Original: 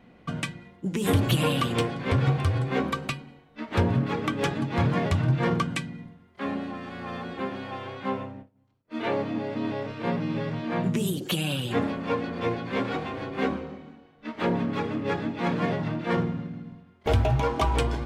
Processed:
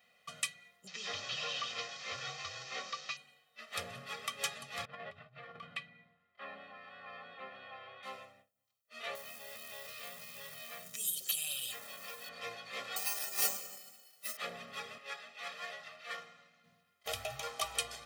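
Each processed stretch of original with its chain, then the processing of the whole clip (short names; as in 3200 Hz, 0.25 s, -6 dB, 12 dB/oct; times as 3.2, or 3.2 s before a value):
0.87–3.17 delta modulation 32 kbps, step -36.5 dBFS + LPF 3900 Hz 6 dB/oct + tilt +1.5 dB/oct
4.85–8.03 negative-ratio compressor -27 dBFS, ratio -0.5 + air absorption 430 m + notches 60/120/180/240/300/360/420 Hz
9.15–12.29 high shelf 3000 Hz +6 dB + companded quantiser 6-bit + compressor 5:1, threshold -30 dBFS
12.96–14.37 tone controls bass -3 dB, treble +15 dB + comb 5 ms, depth 87% + careless resampling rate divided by 6×, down filtered, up hold
14.98–16.64 HPF 790 Hz 6 dB/oct + high shelf 6400 Hz -7 dB
whole clip: differentiator; comb 1.6 ms, depth 99%; gain +1 dB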